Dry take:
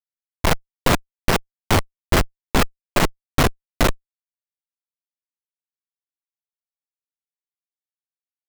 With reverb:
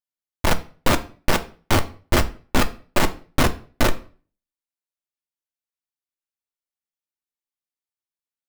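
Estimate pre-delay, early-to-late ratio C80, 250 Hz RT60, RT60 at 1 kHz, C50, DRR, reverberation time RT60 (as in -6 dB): 3 ms, 22.0 dB, 0.50 s, 0.40 s, 17.0 dB, 7.5 dB, 0.40 s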